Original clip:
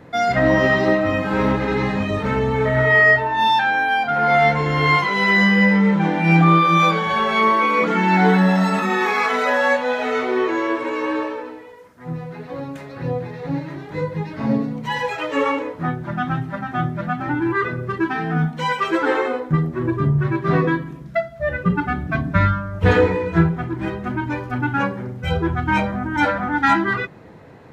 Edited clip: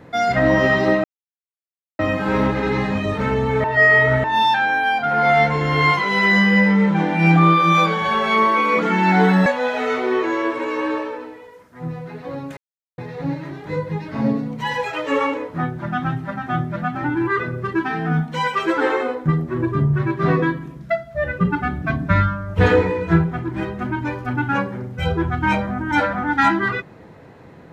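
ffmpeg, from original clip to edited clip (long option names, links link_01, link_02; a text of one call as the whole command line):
ffmpeg -i in.wav -filter_complex "[0:a]asplit=7[link_01][link_02][link_03][link_04][link_05][link_06][link_07];[link_01]atrim=end=1.04,asetpts=PTS-STARTPTS,afade=type=out:start_time=1.036:duration=0.004:curve=hsin,apad=pad_dur=0.95[link_08];[link_02]atrim=start=1.04:end=2.692,asetpts=PTS-STARTPTS,afade=type=in:duration=0.004:curve=hsin[link_09];[link_03]atrim=start=2.688:end=3.292,asetpts=PTS-STARTPTS,areverse[link_10];[link_04]atrim=start=3.288:end=8.512[link_11];[link_05]atrim=start=9.708:end=12.82,asetpts=PTS-STARTPTS,afade=type=out:start_time=3.108:duration=0.004:curve=hsin[link_12];[link_06]atrim=start=12.82:end=13.23,asetpts=PTS-STARTPTS,volume=0[link_13];[link_07]atrim=start=13.23,asetpts=PTS-STARTPTS,afade=type=in:duration=0.004:curve=hsin[link_14];[link_08][link_09]concat=n=2:v=0:a=1[link_15];[link_15][link_10]acrossfade=duration=0.004:curve1=hsin:curve2=hsin[link_16];[link_16][link_11]acrossfade=duration=0.004:curve1=hsin:curve2=hsin[link_17];[link_12][link_13][link_14]concat=n=3:v=0:a=1[link_18];[link_17][link_18]acrossfade=duration=0.004:curve1=hsin:curve2=hsin" out.wav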